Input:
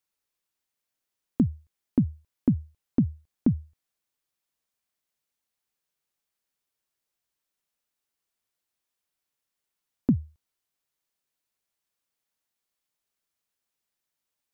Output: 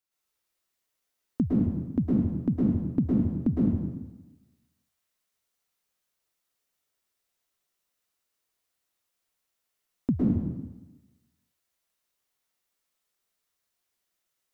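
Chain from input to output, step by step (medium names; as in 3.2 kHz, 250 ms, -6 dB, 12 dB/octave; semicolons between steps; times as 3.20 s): plate-style reverb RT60 1.1 s, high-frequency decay 0.85×, pre-delay 100 ms, DRR -7.5 dB; trim -4 dB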